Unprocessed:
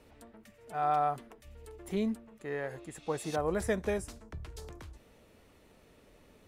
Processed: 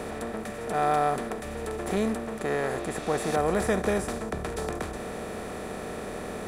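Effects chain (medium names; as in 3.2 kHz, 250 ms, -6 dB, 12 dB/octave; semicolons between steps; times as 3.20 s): spectral levelling over time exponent 0.4; trim +2 dB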